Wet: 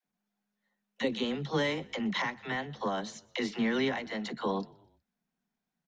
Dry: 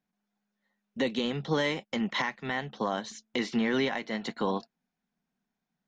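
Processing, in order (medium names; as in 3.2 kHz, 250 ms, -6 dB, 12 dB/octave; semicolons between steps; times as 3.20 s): vibrato 2.3 Hz 7.9 cents; phase dispersion lows, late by 60 ms, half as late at 390 Hz; frequency-shifting echo 123 ms, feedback 49%, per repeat -41 Hz, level -24 dB; trim -2 dB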